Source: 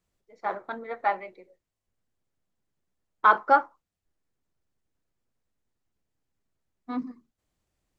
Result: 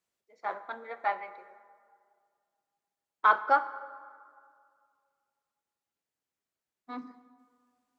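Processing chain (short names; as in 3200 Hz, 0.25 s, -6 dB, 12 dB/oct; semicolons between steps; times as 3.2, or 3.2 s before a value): HPF 630 Hz 6 dB/oct; plate-style reverb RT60 2.1 s, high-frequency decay 0.55×, DRR 13 dB; gain -2.5 dB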